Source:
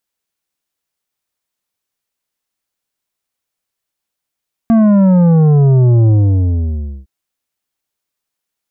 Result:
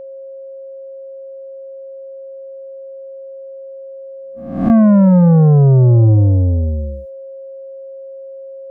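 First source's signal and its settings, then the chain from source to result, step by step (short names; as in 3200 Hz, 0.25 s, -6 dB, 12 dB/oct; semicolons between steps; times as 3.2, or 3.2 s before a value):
sub drop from 230 Hz, over 2.36 s, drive 9 dB, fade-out 0.98 s, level -7 dB
spectral swells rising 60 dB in 0.65 s; gate -40 dBFS, range -21 dB; whine 540 Hz -29 dBFS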